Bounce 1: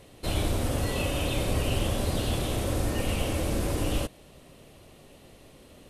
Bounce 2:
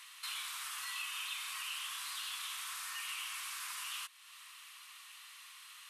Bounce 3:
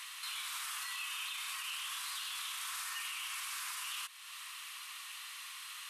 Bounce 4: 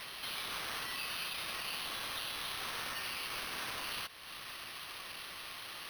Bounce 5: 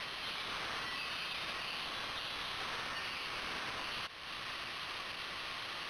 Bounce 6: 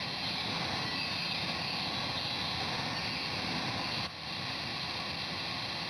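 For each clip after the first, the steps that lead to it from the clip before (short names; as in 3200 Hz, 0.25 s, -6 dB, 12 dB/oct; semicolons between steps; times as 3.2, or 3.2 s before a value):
elliptic high-pass 1100 Hz, stop band 50 dB; compressor 2:1, threshold -55 dBFS, peak gain reduction 12.5 dB; gain +6.5 dB
limiter -39 dBFS, peak gain reduction 10.5 dB; gain +7 dB
sample-and-hold 6×; gain +1 dB
limiter -36.5 dBFS, peak gain reduction 5.5 dB; air absorption 84 m; gain +5.5 dB
reverb RT60 0.60 s, pre-delay 3 ms, DRR 8 dB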